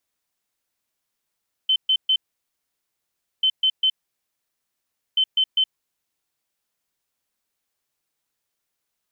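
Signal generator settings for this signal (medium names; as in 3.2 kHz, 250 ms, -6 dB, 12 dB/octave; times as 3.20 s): beep pattern sine 3.07 kHz, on 0.07 s, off 0.13 s, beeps 3, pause 1.27 s, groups 3, -15 dBFS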